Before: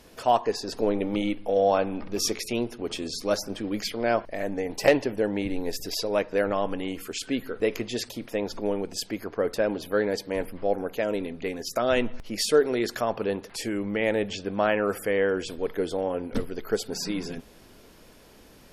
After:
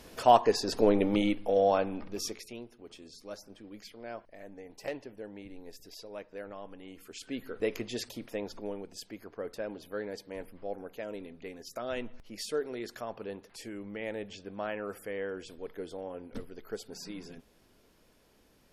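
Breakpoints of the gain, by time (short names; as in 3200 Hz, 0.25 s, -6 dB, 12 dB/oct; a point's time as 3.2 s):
0.99 s +1 dB
2.04 s -6 dB
2.66 s -18 dB
6.76 s -18 dB
7.59 s -6 dB
8.2 s -6 dB
8.88 s -12.5 dB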